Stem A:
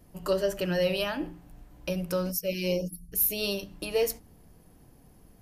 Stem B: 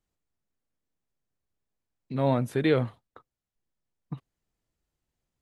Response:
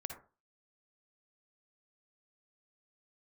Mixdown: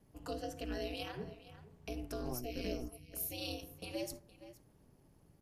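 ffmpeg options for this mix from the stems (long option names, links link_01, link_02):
-filter_complex "[0:a]volume=-10.5dB,asplit=4[link_01][link_02][link_03][link_04];[link_02]volume=-3.5dB[link_05];[link_03]volume=-15.5dB[link_06];[1:a]lowpass=1600,volume=-4.5dB[link_07];[link_04]apad=whole_len=238935[link_08];[link_07][link_08]sidechaincompress=threshold=-47dB:ratio=8:attack=16:release=292[link_09];[2:a]atrim=start_sample=2205[link_10];[link_05][link_10]afir=irnorm=-1:irlink=0[link_11];[link_06]aecho=0:1:465:1[link_12];[link_01][link_09][link_11][link_12]amix=inputs=4:normalize=0,lowpass=11000,acrossover=split=370|3000[link_13][link_14][link_15];[link_14]acompressor=threshold=-43dB:ratio=3[link_16];[link_13][link_16][link_15]amix=inputs=3:normalize=0,aeval=exprs='val(0)*sin(2*PI*120*n/s)':channel_layout=same"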